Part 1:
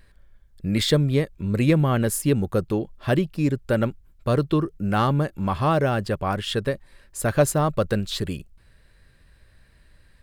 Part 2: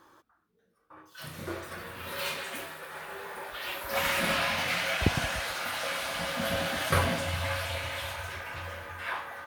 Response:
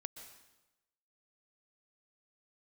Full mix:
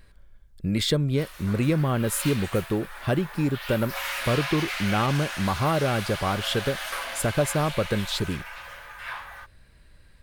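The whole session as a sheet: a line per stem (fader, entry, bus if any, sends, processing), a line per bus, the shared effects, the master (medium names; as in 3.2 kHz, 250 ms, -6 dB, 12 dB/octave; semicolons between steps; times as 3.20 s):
+1.0 dB, 0.00 s, no send, band-stop 1.8 kHz, Q 16; compression 2:1, threshold -24 dBFS, peak gain reduction 7 dB
+0.5 dB, 0.00 s, no send, saturation -23 dBFS, distortion -13 dB; expander -45 dBFS; high-pass 820 Hz 12 dB/octave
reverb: none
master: none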